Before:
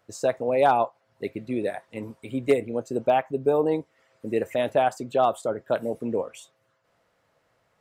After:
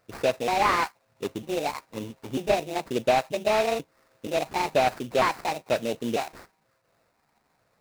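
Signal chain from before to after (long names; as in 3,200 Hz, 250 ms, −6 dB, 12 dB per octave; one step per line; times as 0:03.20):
pitch shifter gated in a rhythm +6.5 semitones, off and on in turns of 474 ms
sample-rate reduction 3,200 Hz, jitter 20%
slew-rate limiting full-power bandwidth 210 Hz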